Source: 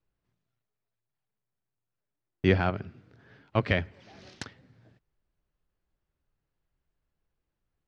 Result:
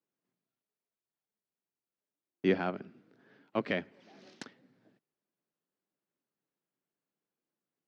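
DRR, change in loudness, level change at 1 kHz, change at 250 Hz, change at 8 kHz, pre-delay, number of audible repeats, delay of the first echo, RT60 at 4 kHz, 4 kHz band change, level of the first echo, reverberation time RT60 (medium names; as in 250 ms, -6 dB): no reverb, -5.5 dB, -5.5 dB, -4.0 dB, no reading, no reverb, no echo, no echo, no reverb, -7.0 dB, no echo, no reverb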